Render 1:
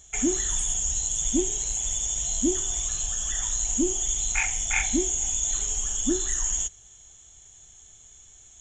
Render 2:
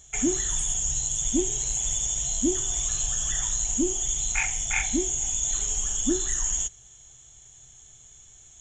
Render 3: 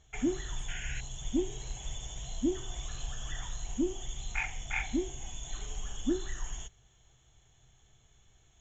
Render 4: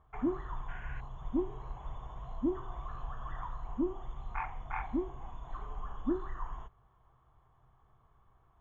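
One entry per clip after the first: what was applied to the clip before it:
peaking EQ 130 Hz +11 dB 0.21 oct; gain riding 0.5 s
painted sound noise, 0.68–1.01 s, 1.4–3.2 kHz -37 dBFS; distance through air 220 m; trim -4 dB
resonant low-pass 1.1 kHz, resonance Q 7.3; trim -2.5 dB

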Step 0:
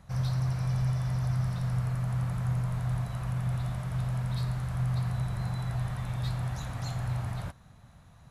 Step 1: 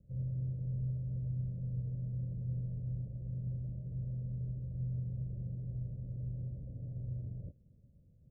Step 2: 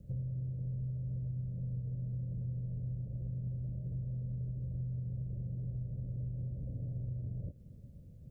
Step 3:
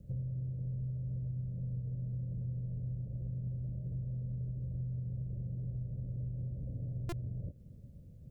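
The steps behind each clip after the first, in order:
steep low-pass 560 Hz 72 dB/octave; trim -8 dB
compression, threshold -47 dBFS, peak gain reduction 13 dB; trim +10.5 dB
buffer glitch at 7.09 s, samples 128, times 10

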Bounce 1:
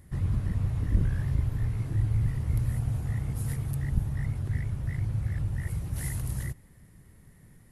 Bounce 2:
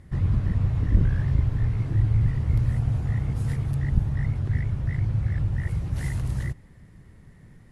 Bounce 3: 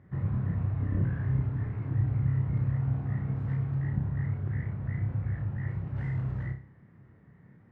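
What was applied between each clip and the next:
distance through air 85 m; trim +5 dB
Chebyshev band-pass 120–1600 Hz, order 2; on a send: flutter echo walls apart 5.2 m, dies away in 0.37 s; on the sum: trim -4.5 dB

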